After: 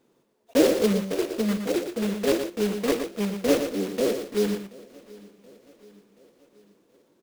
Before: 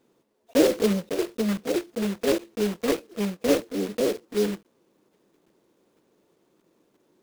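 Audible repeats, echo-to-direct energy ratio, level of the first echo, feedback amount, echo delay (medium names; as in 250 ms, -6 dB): 5, -8.0 dB, -8.0 dB, no regular repeats, 117 ms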